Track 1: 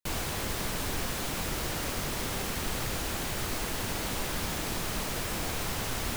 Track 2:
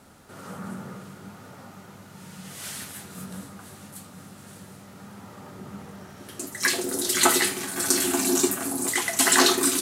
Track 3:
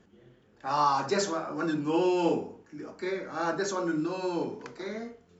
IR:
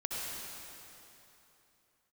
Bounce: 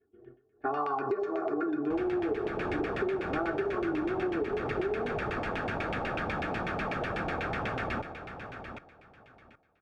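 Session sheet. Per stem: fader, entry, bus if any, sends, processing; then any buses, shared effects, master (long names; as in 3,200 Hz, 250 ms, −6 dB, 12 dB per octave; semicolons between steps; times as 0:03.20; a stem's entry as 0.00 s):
+2.5 dB, 1.85 s, no bus, no send, echo send −10.5 dB, no processing
muted
+1.5 dB, 0.00 s, bus A, send −18 dB, no echo send, downward expander −47 dBFS; parametric band 420 Hz +14.5 dB 0.24 octaves; comb filter 2.8 ms, depth 97%
bus A: 0.0 dB, low-shelf EQ 340 Hz +10 dB; downward compressor 3 to 1, threshold −27 dBFS, peak gain reduction 18 dB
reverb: on, RT60 3.2 s, pre-delay 58 ms
echo: repeating echo 769 ms, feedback 20%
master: notch comb filter 1,000 Hz; auto-filter low-pass saw down 8.1 Hz 690–2,500 Hz; downward compressor 6 to 1, threshold −28 dBFS, peak gain reduction 12.5 dB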